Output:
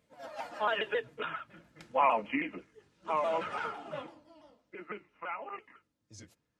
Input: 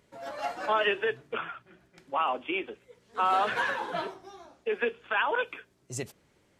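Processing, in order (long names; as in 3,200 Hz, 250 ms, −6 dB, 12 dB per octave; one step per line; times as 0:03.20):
pitch shifter swept by a sawtooth −3 semitones, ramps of 151 ms
source passing by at 0:01.86, 39 m/s, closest 23 metres
notch comb filter 380 Hz
level +4.5 dB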